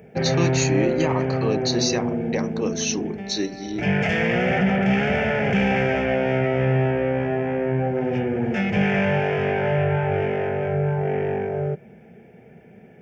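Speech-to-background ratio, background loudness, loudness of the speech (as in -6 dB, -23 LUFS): -4.0 dB, -22.5 LUFS, -26.5 LUFS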